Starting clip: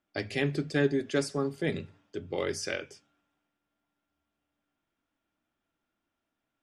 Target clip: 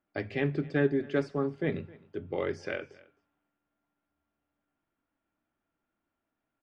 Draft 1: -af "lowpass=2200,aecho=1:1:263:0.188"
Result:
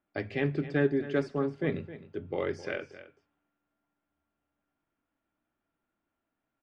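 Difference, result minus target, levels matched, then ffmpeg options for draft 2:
echo-to-direct +8 dB
-af "lowpass=2200,aecho=1:1:263:0.075"

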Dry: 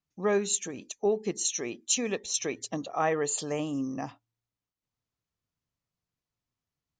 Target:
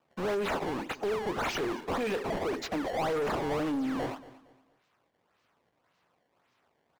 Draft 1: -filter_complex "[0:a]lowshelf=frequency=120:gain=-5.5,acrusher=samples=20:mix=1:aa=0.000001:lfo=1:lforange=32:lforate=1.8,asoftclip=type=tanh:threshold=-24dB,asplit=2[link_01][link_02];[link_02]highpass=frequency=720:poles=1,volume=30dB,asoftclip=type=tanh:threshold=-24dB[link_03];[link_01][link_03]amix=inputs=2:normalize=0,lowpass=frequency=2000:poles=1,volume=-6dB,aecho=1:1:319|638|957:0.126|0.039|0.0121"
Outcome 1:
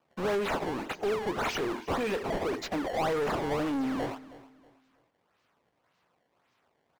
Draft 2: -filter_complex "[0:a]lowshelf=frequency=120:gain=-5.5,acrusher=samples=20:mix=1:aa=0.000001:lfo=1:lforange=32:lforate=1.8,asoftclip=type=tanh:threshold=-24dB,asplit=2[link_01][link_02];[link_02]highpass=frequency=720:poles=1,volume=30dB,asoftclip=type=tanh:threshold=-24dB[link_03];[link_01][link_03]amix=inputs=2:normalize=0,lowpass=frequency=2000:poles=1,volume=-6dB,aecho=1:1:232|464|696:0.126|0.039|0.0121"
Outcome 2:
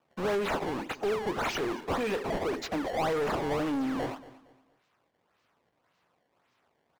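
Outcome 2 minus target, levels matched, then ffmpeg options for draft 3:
soft clipping: distortion −6 dB
-filter_complex "[0:a]lowshelf=frequency=120:gain=-5.5,acrusher=samples=20:mix=1:aa=0.000001:lfo=1:lforange=32:lforate=1.8,asoftclip=type=tanh:threshold=-31dB,asplit=2[link_01][link_02];[link_02]highpass=frequency=720:poles=1,volume=30dB,asoftclip=type=tanh:threshold=-24dB[link_03];[link_01][link_03]amix=inputs=2:normalize=0,lowpass=frequency=2000:poles=1,volume=-6dB,aecho=1:1:232|464|696:0.126|0.039|0.0121"

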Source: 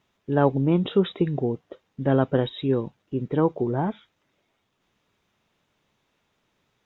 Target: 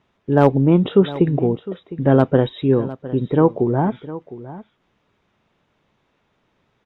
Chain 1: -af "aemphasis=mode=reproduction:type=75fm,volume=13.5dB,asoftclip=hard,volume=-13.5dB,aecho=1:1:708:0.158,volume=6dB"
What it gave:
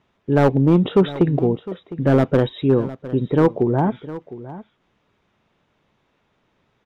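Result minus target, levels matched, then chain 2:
gain into a clipping stage and back: distortion +18 dB
-af "aemphasis=mode=reproduction:type=75fm,volume=7.5dB,asoftclip=hard,volume=-7.5dB,aecho=1:1:708:0.158,volume=6dB"

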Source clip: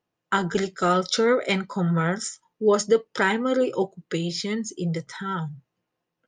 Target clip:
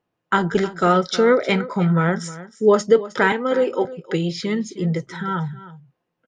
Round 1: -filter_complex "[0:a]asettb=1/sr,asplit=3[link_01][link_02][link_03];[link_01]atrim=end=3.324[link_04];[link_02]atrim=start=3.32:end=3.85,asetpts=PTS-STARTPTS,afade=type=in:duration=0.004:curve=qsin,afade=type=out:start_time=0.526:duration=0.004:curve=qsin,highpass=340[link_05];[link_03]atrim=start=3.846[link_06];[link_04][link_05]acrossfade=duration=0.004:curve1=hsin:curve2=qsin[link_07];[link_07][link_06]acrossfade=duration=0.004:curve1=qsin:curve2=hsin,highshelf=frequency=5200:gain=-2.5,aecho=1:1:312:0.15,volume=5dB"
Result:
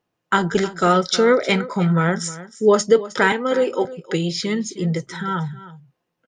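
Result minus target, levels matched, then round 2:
8,000 Hz band +7.0 dB
-filter_complex "[0:a]asettb=1/sr,asplit=3[link_01][link_02][link_03];[link_01]atrim=end=3.324[link_04];[link_02]atrim=start=3.32:end=3.85,asetpts=PTS-STARTPTS,afade=type=in:duration=0.004:curve=qsin,afade=type=out:start_time=0.526:duration=0.004:curve=qsin,highpass=340[link_05];[link_03]atrim=start=3.846[link_06];[link_04][link_05]acrossfade=duration=0.004:curve1=hsin:curve2=qsin[link_07];[link_07][link_06]acrossfade=duration=0.004:curve1=qsin:curve2=hsin,highshelf=frequency=5200:gain=-14,aecho=1:1:312:0.15,volume=5dB"

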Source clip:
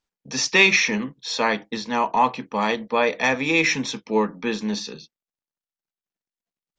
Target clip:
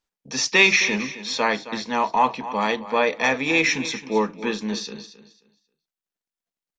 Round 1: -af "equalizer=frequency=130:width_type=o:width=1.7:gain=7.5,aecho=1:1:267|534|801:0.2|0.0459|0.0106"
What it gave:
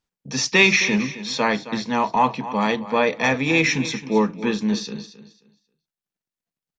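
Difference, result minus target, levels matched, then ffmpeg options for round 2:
125 Hz band +7.5 dB
-af "equalizer=frequency=130:width_type=o:width=1.7:gain=-3,aecho=1:1:267|534|801:0.2|0.0459|0.0106"

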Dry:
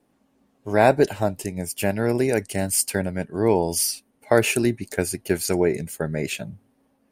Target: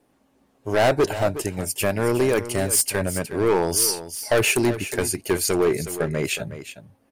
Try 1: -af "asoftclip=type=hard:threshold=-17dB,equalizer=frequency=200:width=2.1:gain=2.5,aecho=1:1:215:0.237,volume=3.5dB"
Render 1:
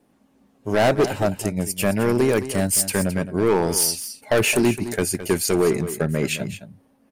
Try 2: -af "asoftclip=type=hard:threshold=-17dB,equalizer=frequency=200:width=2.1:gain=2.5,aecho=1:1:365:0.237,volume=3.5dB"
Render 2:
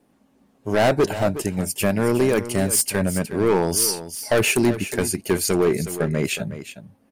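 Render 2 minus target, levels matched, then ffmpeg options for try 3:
250 Hz band +2.5 dB
-af "asoftclip=type=hard:threshold=-17dB,equalizer=frequency=200:width=2.1:gain=-5.5,aecho=1:1:365:0.237,volume=3.5dB"

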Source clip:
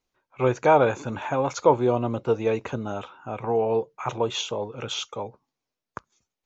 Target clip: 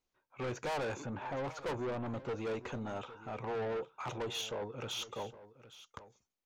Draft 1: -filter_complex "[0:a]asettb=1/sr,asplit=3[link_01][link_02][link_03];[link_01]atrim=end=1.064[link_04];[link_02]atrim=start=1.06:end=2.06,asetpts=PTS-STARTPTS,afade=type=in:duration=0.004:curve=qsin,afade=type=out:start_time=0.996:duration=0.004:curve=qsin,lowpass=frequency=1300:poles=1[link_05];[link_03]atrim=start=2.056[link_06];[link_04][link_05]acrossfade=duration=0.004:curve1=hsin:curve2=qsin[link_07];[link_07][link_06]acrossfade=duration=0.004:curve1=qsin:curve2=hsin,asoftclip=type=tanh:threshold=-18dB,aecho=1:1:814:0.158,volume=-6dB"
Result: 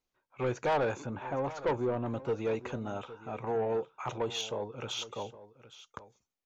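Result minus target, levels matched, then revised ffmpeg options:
soft clipping: distortion −6 dB
-filter_complex "[0:a]asettb=1/sr,asplit=3[link_01][link_02][link_03];[link_01]atrim=end=1.064[link_04];[link_02]atrim=start=1.06:end=2.06,asetpts=PTS-STARTPTS,afade=type=in:duration=0.004:curve=qsin,afade=type=out:start_time=0.996:duration=0.004:curve=qsin,lowpass=frequency=1300:poles=1[link_05];[link_03]atrim=start=2.056[link_06];[link_04][link_05]acrossfade=duration=0.004:curve1=hsin:curve2=qsin[link_07];[link_07][link_06]acrossfade=duration=0.004:curve1=qsin:curve2=hsin,asoftclip=type=tanh:threshold=-28dB,aecho=1:1:814:0.158,volume=-6dB"

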